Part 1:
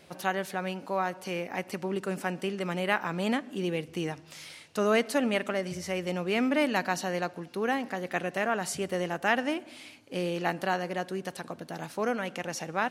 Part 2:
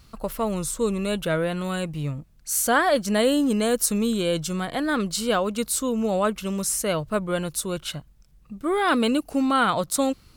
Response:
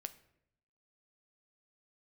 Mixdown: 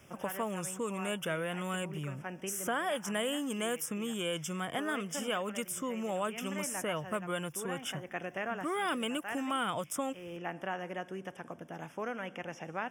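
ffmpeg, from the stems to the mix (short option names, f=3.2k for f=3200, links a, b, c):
-filter_complex "[0:a]acrossover=split=3900[a][b];[b]acompressor=threshold=-57dB:ratio=4:attack=1:release=60[c];[a][c]amix=inputs=2:normalize=0,volume=-8dB,asplit=2[d][e];[e]volume=-4.5dB[f];[1:a]highpass=f=91:w=0.5412,highpass=f=91:w=1.3066,volume=-4dB,asplit=2[g][h];[h]apad=whole_len=569024[i];[d][i]sidechaincompress=threshold=-36dB:ratio=8:attack=16:release=663[j];[2:a]atrim=start_sample=2205[k];[f][k]afir=irnorm=-1:irlink=0[l];[j][g][l]amix=inputs=3:normalize=0,asuperstop=centerf=4200:order=8:qfactor=2.6,acrossover=split=820|2700[m][n][o];[m]acompressor=threshold=-37dB:ratio=4[p];[n]acompressor=threshold=-36dB:ratio=4[q];[o]acompressor=threshold=-39dB:ratio=4[r];[p][q][r]amix=inputs=3:normalize=0"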